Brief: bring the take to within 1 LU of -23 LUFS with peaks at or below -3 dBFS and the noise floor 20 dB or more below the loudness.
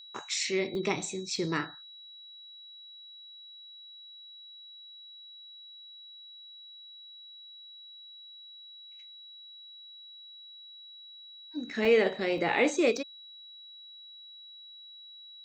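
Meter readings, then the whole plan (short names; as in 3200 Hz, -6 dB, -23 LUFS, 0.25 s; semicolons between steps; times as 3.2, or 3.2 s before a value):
dropouts 5; longest dropout 1.1 ms; steady tone 3900 Hz; tone level -47 dBFS; loudness -29.5 LUFS; peak -12.5 dBFS; loudness target -23.0 LUFS
-> interpolate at 0.75/1.36/11.85/12.38/12.97, 1.1 ms; notch 3900 Hz, Q 30; gain +6.5 dB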